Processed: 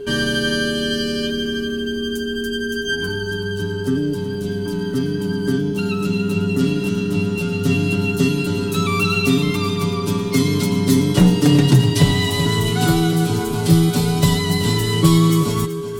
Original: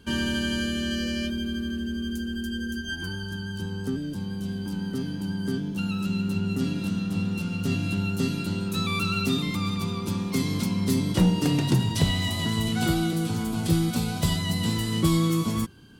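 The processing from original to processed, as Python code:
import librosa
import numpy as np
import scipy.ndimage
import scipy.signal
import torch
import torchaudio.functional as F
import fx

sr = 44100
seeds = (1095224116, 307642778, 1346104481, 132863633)

y = x + 10.0 ** (-37.0 / 20.0) * np.sin(2.0 * np.pi * 410.0 * np.arange(len(x)) / sr)
y = y + 0.65 * np.pad(y, (int(7.0 * sr / 1000.0), 0))[:len(y)]
y = y + 10.0 ** (-12.5 / 20.0) * np.pad(y, (int(378 * sr / 1000.0), 0))[:len(y)]
y = y * 10.0 ** (6.5 / 20.0)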